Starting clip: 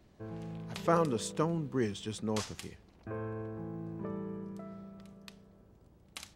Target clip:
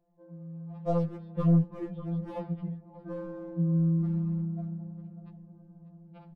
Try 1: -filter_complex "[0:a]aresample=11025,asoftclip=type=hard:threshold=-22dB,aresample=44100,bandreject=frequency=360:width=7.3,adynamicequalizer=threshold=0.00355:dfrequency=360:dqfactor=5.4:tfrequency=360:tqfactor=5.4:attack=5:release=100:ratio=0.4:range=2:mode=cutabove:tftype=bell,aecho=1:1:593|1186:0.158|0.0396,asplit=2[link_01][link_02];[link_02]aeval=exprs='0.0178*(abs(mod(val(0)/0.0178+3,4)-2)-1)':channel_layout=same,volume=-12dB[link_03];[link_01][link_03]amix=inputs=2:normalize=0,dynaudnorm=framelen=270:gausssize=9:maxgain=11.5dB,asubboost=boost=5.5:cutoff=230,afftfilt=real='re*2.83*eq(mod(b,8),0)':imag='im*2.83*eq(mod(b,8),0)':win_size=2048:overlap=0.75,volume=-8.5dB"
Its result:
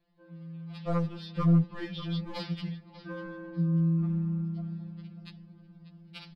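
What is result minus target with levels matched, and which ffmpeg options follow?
500 Hz band −4.0 dB
-filter_complex "[0:a]aresample=11025,asoftclip=type=hard:threshold=-22dB,aresample=44100,bandreject=frequency=360:width=7.3,adynamicequalizer=threshold=0.00355:dfrequency=360:dqfactor=5.4:tfrequency=360:tqfactor=5.4:attack=5:release=100:ratio=0.4:range=2:mode=cutabove:tftype=bell,lowpass=frequency=700:width_type=q:width=1.9,aecho=1:1:593|1186:0.158|0.0396,asplit=2[link_01][link_02];[link_02]aeval=exprs='0.0178*(abs(mod(val(0)/0.0178+3,4)-2)-1)':channel_layout=same,volume=-12dB[link_03];[link_01][link_03]amix=inputs=2:normalize=0,dynaudnorm=framelen=270:gausssize=9:maxgain=11.5dB,asubboost=boost=5.5:cutoff=230,afftfilt=real='re*2.83*eq(mod(b,8),0)':imag='im*2.83*eq(mod(b,8),0)':win_size=2048:overlap=0.75,volume=-8.5dB"

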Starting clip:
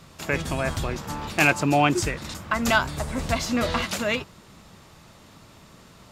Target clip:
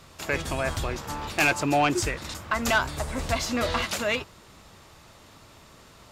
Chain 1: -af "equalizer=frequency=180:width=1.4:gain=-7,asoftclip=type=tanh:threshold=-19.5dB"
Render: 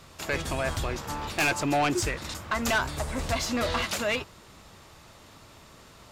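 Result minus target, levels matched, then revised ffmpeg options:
soft clipping: distortion +6 dB
-af "equalizer=frequency=180:width=1.4:gain=-7,asoftclip=type=tanh:threshold=-13dB"

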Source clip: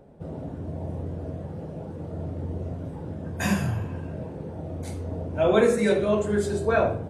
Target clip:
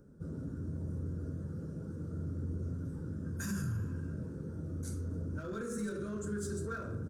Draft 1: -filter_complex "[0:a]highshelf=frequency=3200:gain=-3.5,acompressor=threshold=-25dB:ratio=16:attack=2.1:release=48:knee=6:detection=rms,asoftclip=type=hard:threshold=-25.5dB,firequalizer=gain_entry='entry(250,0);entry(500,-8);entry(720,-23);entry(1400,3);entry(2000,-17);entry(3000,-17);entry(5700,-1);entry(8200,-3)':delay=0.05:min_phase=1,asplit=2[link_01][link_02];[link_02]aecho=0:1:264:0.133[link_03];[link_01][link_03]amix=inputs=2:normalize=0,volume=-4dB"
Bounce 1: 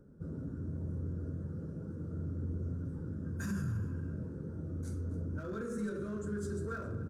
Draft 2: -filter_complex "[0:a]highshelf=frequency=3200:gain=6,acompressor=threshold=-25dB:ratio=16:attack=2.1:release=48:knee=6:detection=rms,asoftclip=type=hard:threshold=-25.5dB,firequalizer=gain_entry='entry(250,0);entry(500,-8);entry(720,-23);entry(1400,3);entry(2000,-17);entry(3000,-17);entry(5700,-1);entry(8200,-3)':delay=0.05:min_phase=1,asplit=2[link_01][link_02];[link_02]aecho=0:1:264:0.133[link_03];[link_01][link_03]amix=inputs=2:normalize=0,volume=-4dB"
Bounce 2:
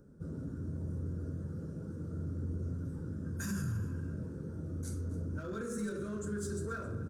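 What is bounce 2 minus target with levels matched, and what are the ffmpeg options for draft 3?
echo-to-direct +10.5 dB
-filter_complex "[0:a]highshelf=frequency=3200:gain=6,acompressor=threshold=-25dB:ratio=16:attack=2.1:release=48:knee=6:detection=rms,asoftclip=type=hard:threshold=-25.5dB,firequalizer=gain_entry='entry(250,0);entry(500,-8);entry(720,-23);entry(1400,3);entry(2000,-17);entry(3000,-17);entry(5700,-1);entry(8200,-3)':delay=0.05:min_phase=1,asplit=2[link_01][link_02];[link_02]aecho=0:1:264:0.0398[link_03];[link_01][link_03]amix=inputs=2:normalize=0,volume=-4dB"

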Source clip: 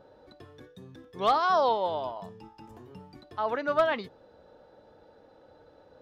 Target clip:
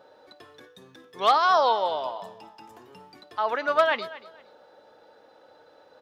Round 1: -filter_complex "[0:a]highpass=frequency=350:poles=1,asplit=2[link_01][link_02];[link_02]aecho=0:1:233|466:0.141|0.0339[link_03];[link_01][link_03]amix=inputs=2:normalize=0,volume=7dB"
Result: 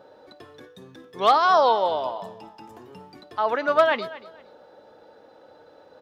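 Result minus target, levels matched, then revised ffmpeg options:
250 Hz band +3.5 dB
-filter_complex "[0:a]highpass=frequency=890:poles=1,asplit=2[link_01][link_02];[link_02]aecho=0:1:233|466:0.141|0.0339[link_03];[link_01][link_03]amix=inputs=2:normalize=0,volume=7dB"

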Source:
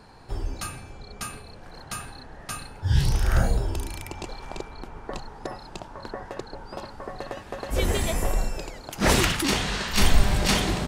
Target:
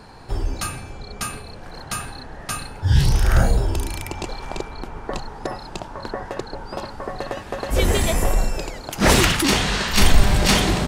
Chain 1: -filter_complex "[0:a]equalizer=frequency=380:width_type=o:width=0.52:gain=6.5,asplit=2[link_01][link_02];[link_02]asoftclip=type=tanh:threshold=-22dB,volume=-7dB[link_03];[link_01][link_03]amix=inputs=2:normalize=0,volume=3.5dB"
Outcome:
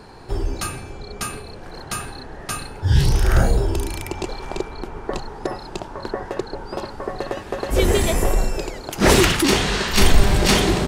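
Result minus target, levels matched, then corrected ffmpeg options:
500 Hz band +3.0 dB
-filter_complex "[0:a]asplit=2[link_01][link_02];[link_02]asoftclip=type=tanh:threshold=-22dB,volume=-7dB[link_03];[link_01][link_03]amix=inputs=2:normalize=0,volume=3.5dB"

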